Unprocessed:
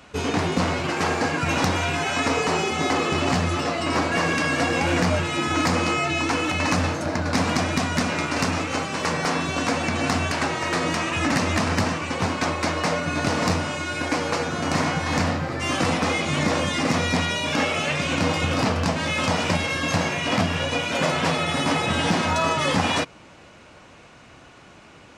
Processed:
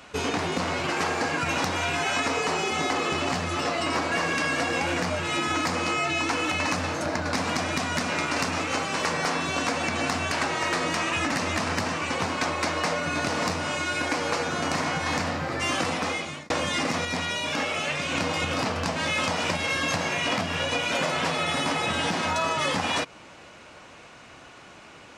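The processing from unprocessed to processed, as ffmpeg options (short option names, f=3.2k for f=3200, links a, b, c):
-filter_complex "[0:a]asplit=4[a][b][c][d];[a]atrim=end=16.5,asetpts=PTS-STARTPTS,afade=t=out:st=15.83:d=0.67[e];[b]atrim=start=16.5:end=17.052,asetpts=PTS-STARTPTS,afade=t=in:d=0.004:c=hsin[f];[c]atrim=start=17.048:end=18.152,asetpts=PTS-STARTPTS,volume=-4.5dB[g];[d]atrim=start=18.148[h];[e][f]concat=n=2:v=0:a=1[i];[i][g]acrossfade=d=0.004:c1=hsin:c2=hsin[j];[j][h]acrossfade=d=0.004:c1=hsin:c2=hsin,acompressor=threshold=-23dB:ratio=6,lowshelf=f=300:g=-7,volume=2dB"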